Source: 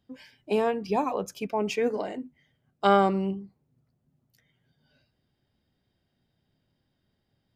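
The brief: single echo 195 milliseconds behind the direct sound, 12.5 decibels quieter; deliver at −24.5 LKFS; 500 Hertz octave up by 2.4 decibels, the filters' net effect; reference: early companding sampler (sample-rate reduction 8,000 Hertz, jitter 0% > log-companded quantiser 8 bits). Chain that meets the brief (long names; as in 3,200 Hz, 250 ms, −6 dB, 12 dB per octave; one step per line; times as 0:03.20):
parametric band 500 Hz +3 dB
single-tap delay 195 ms −12.5 dB
sample-rate reduction 8,000 Hz, jitter 0%
log-companded quantiser 8 bits
level +0.5 dB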